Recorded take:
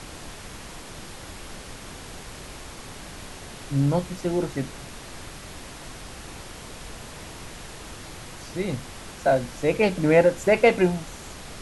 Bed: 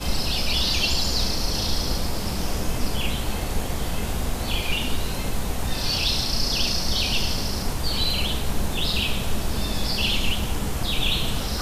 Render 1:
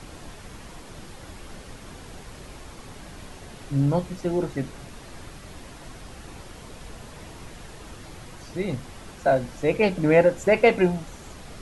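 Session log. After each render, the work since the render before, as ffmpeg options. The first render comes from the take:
-af "afftdn=nr=6:nf=-41"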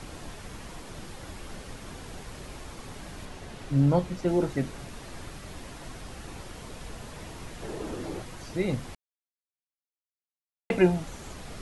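-filter_complex "[0:a]asettb=1/sr,asplit=3[a][b][c];[a]atrim=end=3.254[d];[b]atrim=start=3.25:end=4.28,asetpts=PTS-STARTPTS,afade=t=in:d=0.004:c=qsin,afade=t=out:st=1.026:d=0.004:c=qsin,highshelf=f=7.6k:g=-6.5[e];[c]atrim=start=4.276[f];[d][e]acrossfade=d=0.004:c1=hsin:c2=qsin[g];[g][f]acrossfade=d=0.004:c1=qsin:c2=hsin,asettb=1/sr,asplit=3[h][i][j];[h]atrim=end=7.624[k];[i]atrim=start=7.62:end=8.22,asetpts=PTS-STARTPTS,afade=t=in:d=0.004:c=qsin,afade=t=out:st=0.596:d=0.004:c=qsin,equalizer=f=370:w=0.73:g=13.5[l];[j]atrim=start=8.216[m];[k][l]acrossfade=d=0.004:c1=hsin:c2=qsin[n];[n][m]acrossfade=d=0.004:c1=qsin:c2=hsin,asplit=3[o][p][q];[o]atrim=end=8.95,asetpts=PTS-STARTPTS,afade=t=out:st=8.946:d=0.004:c=hsin[r];[p]atrim=start=8.95:end=10.7,asetpts=PTS-STARTPTS,volume=0[s];[q]atrim=start=10.7,asetpts=PTS-STARTPTS,afade=t=in:d=0.004:c=hsin[t];[r][s][t]concat=n=3:v=0:a=1"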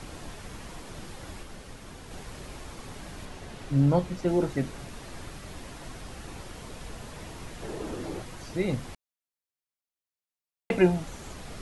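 -filter_complex "[0:a]asplit=3[a][b][c];[a]atrim=end=1.432[d];[b]atrim=start=1.428:end=2.112,asetpts=PTS-STARTPTS,volume=-3dB[e];[c]atrim=start=2.108[f];[d][e]acrossfade=d=0.004:c1=hsin:c2=hsin[g];[g][f]acrossfade=d=0.004:c1=hsin:c2=hsin"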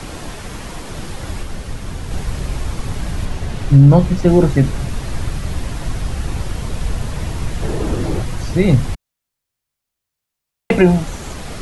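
-filter_complex "[0:a]acrossover=split=150|5200[a][b][c];[a]dynaudnorm=f=320:g=9:m=11dB[d];[d][b][c]amix=inputs=3:normalize=0,alimiter=level_in=12dB:limit=-1dB:release=50:level=0:latency=1"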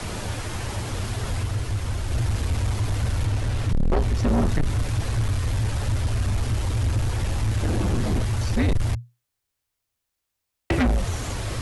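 -af "afreqshift=-120,asoftclip=type=tanh:threshold=-17dB"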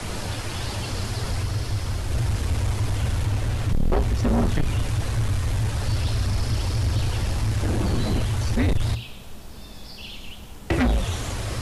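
-filter_complex "[1:a]volume=-15dB[a];[0:a][a]amix=inputs=2:normalize=0"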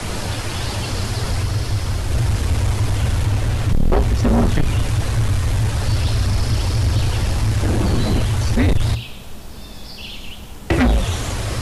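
-af "volume=5.5dB"

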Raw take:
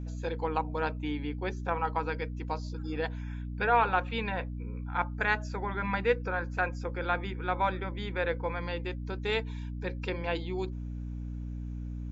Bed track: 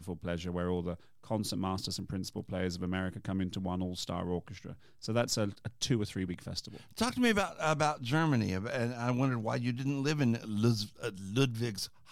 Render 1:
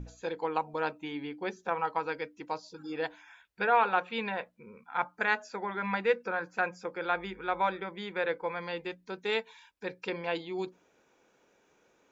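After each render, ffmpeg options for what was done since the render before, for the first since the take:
-af "bandreject=f=60:t=h:w=6,bandreject=f=120:t=h:w=6,bandreject=f=180:t=h:w=6,bandreject=f=240:t=h:w=6,bandreject=f=300:t=h:w=6"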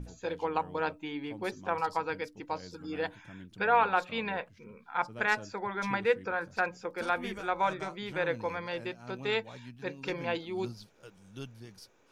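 -filter_complex "[1:a]volume=-14.5dB[a];[0:a][a]amix=inputs=2:normalize=0"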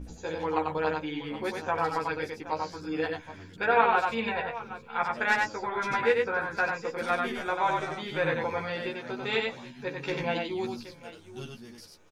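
-filter_complex "[0:a]asplit=2[a][b];[b]adelay=13,volume=-2.5dB[c];[a][c]amix=inputs=2:normalize=0,asplit=2[d][e];[e]aecho=0:1:93|105|772:0.668|0.266|0.178[f];[d][f]amix=inputs=2:normalize=0"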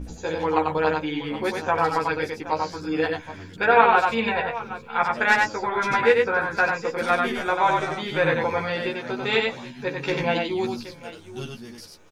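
-af "volume=6.5dB"

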